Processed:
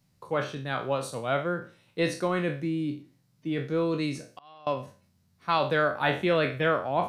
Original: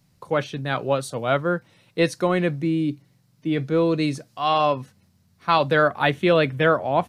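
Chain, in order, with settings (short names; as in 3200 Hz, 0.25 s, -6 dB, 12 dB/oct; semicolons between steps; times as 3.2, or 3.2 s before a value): spectral trails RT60 0.38 s; 4.27–4.67 flipped gate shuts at -23 dBFS, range -24 dB; gain -7 dB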